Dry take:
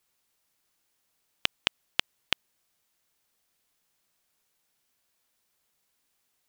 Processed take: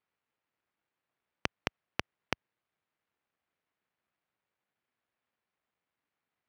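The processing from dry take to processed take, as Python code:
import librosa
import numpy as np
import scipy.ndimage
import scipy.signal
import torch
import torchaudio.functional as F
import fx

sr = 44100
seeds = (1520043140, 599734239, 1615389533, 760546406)

y = scipy.signal.sosfilt(scipy.signal.butter(4, 2400.0, 'lowpass', fs=sr, output='sos'), x)
y = np.maximum(y, 0.0)
y = scipy.signal.sosfilt(scipy.signal.butter(2, 70.0, 'highpass', fs=sr, output='sos'), y)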